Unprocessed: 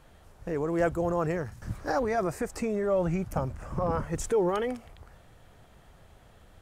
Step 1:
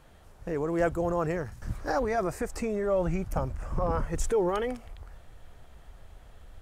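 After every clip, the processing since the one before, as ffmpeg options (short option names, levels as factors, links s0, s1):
-af "asubboost=boost=3.5:cutoff=69"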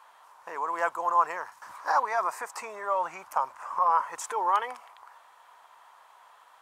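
-af "highpass=f=990:t=q:w=6.5"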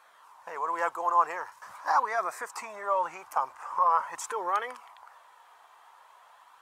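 -af "flanger=delay=0.5:depth=2.1:regen=-51:speed=0.44:shape=sinusoidal,volume=1.5"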